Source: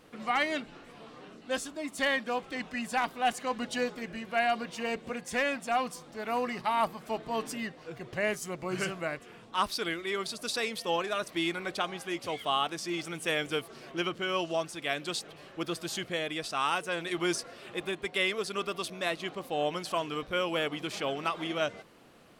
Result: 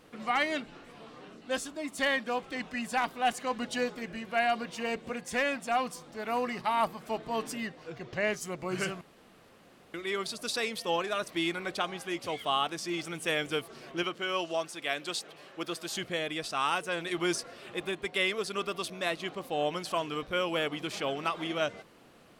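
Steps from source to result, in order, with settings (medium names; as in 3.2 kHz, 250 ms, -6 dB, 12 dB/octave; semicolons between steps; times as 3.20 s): 7.91–8.41 s: resonant high shelf 7.4 kHz -7 dB, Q 1.5; 9.01–9.94 s: room tone; 14.03–15.96 s: high-pass 310 Hz 6 dB/octave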